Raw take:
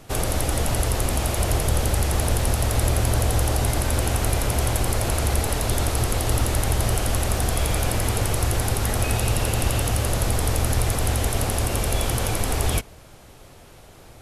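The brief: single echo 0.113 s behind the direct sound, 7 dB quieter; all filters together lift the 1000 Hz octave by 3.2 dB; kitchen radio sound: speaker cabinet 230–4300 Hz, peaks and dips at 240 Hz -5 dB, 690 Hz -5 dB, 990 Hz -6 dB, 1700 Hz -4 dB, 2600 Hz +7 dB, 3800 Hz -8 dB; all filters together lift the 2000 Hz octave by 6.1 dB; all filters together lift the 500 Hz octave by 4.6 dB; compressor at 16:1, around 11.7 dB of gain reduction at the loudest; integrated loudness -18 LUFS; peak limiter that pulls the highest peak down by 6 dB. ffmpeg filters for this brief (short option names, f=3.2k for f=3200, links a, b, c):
-af "equalizer=f=500:t=o:g=6,equalizer=f=1k:t=o:g=6.5,equalizer=f=2k:t=o:g=5,acompressor=threshold=-27dB:ratio=16,alimiter=limit=-23dB:level=0:latency=1,highpass=230,equalizer=f=240:t=q:w=4:g=-5,equalizer=f=690:t=q:w=4:g=-5,equalizer=f=990:t=q:w=4:g=-6,equalizer=f=1.7k:t=q:w=4:g=-4,equalizer=f=2.6k:t=q:w=4:g=7,equalizer=f=3.8k:t=q:w=4:g=-8,lowpass=f=4.3k:w=0.5412,lowpass=f=4.3k:w=1.3066,aecho=1:1:113:0.447,volume=19dB"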